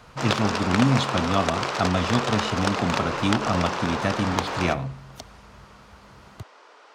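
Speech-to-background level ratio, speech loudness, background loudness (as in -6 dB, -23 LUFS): 1.5 dB, -25.5 LUFS, -27.0 LUFS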